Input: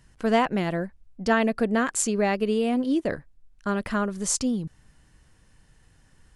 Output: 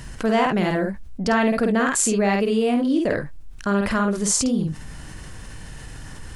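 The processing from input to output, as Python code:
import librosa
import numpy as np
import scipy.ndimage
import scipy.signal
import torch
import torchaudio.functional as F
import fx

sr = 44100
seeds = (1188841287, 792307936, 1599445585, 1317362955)

y = fx.room_early_taps(x, sr, ms=(50, 70), db=(-4.0, -17.0))
y = fx.env_flatten(y, sr, amount_pct=50)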